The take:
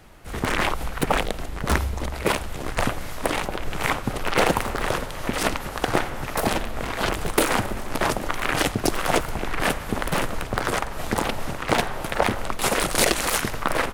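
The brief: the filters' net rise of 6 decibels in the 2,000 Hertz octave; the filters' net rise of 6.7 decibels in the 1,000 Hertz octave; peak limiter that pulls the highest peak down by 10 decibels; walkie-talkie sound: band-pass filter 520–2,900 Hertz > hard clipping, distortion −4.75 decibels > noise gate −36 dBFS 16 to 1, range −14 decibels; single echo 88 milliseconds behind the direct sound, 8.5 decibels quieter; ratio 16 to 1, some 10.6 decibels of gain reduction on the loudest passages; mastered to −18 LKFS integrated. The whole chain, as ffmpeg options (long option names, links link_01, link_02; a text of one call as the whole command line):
ffmpeg -i in.wav -af "equalizer=frequency=1000:width_type=o:gain=7.5,equalizer=frequency=2000:width_type=o:gain=6,acompressor=threshold=-21dB:ratio=16,alimiter=limit=-15.5dB:level=0:latency=1,highpass=520,lowpass=2900,aecho=1:1:88:0.376,asoftclip=type=hard:threshold=-34dB,agate=range=-14dB:threshold=-36dB:ratio=16,volume=19.5dB" out.wav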